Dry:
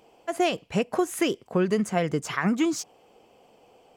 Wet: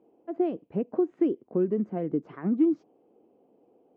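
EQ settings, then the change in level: band-pass 300 Hz, Q 2.3; air absorption 200 m; +3.0 dB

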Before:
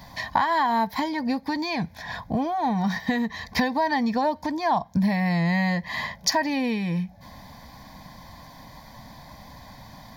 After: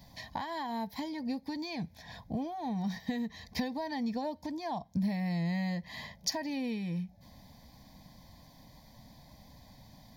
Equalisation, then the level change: bell 1300 Hz -13 dB 1.2 oct; -8.5 dB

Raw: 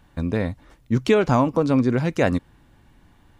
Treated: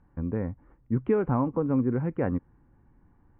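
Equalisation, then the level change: Gaussian blur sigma 5.5 samples; air absorption 76 m; bell 640 Hz -9.5 dB 0.23 oct; -5.5 dB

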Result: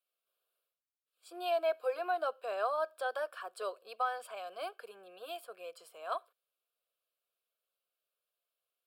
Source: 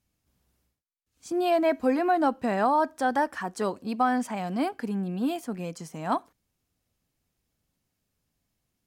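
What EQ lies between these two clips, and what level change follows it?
HPF 480 Hz 24 dB/oct; dynamic EQ 5400 Hz, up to +4 dB, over -51 dBFS, Q 1.7; fixed phaser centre 1300 Hz, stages 8; -5.0 dB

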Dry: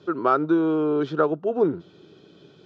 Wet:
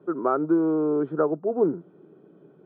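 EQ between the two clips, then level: HPF 150 Hz 24 dB/oct; LPF 1200 Hz 12 dB/oct; air absorption 410 m; 0.0 dB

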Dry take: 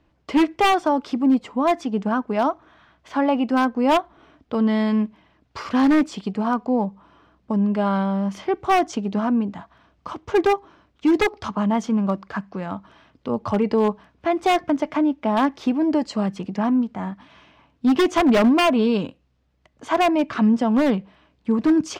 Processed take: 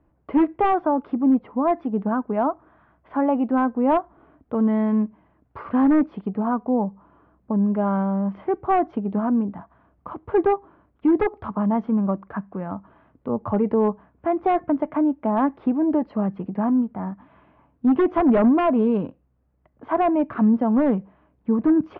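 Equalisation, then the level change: LPF 1400 Hz 12 dB/oct; air absorption 270 m; 0.0 dB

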